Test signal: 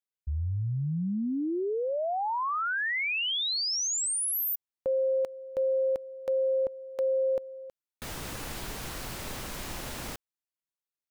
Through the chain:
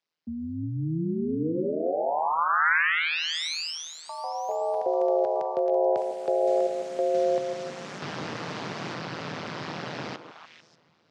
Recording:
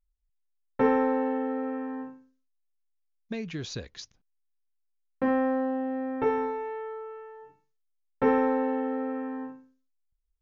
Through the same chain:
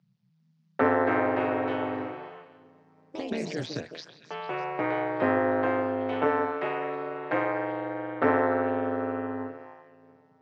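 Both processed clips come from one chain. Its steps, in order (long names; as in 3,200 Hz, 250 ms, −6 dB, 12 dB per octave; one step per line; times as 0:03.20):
coupled-rooms reverb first 0.31 s, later 3.9 s, from −17 dB, DRR 19.5 dB
dynamic equaliser 1,500 Hz, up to +8 dB, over −44 dBFS, Q 1.6
on a send: echo through a band-pass that steps 149 ms, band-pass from 400 Hz, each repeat 1.4 octaves, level −7 dB
on the sum: amplitude modulation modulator 160 Hz, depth 95%
elliptic band-pass filter 120–5,100 Hz, stop band 40 dB
delay with pitch and tempo change per echo 401 ms, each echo +3 semitones, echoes 3, each echo −6 dB
multiband upward and downward compressor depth 40%
level +4.5 dB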